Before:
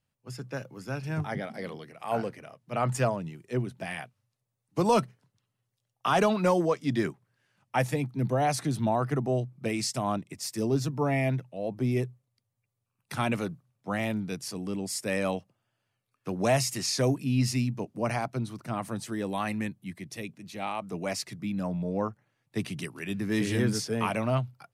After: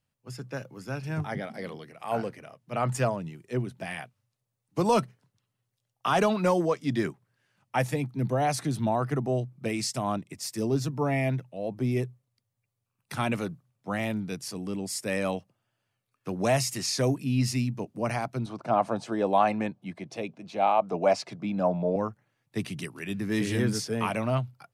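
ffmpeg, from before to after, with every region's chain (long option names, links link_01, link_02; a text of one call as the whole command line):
ffmpeg -i in.wav -filter_complex "[0:a]asettb=1/sr,asplit=3[link_01][link_02][link_03];[link_01]atrim=end=18.464[link_04];[link_02]atrim=start=18.46:end=21.96,asetpts=PTS-STARTPTS,afade=type=in:duration=0.004:curve=qsin,afade=type=out:start_time=3.496:duration=0.004:curve=qsin,highpass=120,lowpass=5600,equalizer=frequency=690:width_type=o:width=1.4:gain=13.5,bandreject=frequency=1900:width=9[link_05];[link_03]atrim=start=21.956[link_06];[link_04][link_05]acrossfade=duration=0.004:curve1=hsin:curve2=qsin[link_07];[link_07][link_06]acrossfade=duration=0.004:curve1=qsin:curve2=hsin" out.wav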